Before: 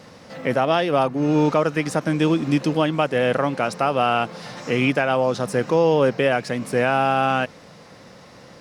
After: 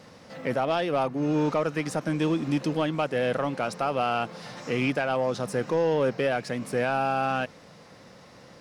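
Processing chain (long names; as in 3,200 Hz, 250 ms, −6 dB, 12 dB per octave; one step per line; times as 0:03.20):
soft clipping −10.5 dBFS, distortion −18 dB
level −5 dB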